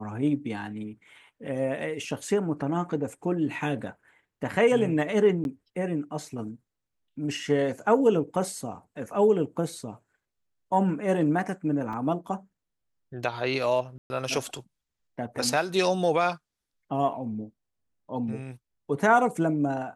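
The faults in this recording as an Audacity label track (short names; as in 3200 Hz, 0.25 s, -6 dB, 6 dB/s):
5.440000	5.450000	gap 11 ms
11.930000	11.930000	gap 3.8 ms
13.980000	14.100000	gap 0.12 s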